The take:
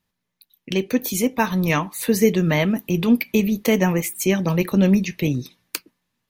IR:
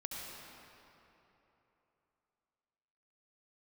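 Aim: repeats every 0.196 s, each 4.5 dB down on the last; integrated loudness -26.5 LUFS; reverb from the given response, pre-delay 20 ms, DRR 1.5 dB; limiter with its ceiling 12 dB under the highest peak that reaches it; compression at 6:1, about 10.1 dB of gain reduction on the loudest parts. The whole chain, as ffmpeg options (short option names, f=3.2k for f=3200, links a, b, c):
-filter_complex "[0:a]acompressor=threshold=-22dB:ratio=6,alimiter=limit=-18.5dB:level=0:latency=1,aecho=1:1:196|392|588|784|980|1176|1372|1568|1764:0.596|0.357|0.214|0.129|0.0772|0.0463|0.0278|0.0167|0.01,asplit=2[a][b];[1:a]atrim=start_sample=2205,adelay=20[c];[b][c]afir=irnorm=-1:irlink=0,volume=-1.5dB[d];[a][d]amix=inputs=2:normalize=0,volume=-1.5dB"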